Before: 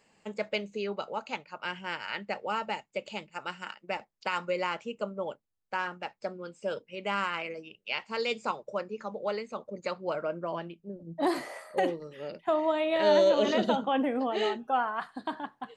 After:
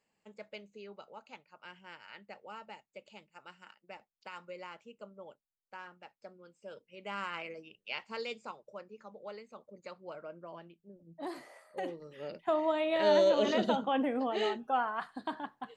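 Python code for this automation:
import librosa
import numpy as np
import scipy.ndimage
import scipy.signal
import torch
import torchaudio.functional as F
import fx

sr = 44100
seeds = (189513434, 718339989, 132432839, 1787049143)

y = fx.gain(x, sr, db=fx.line((6.65, -15.0), (7.37, -6.0), (8.11, -6.0), (8.52, -13.0), (11.69, -13.0), (12.24, -3.0)))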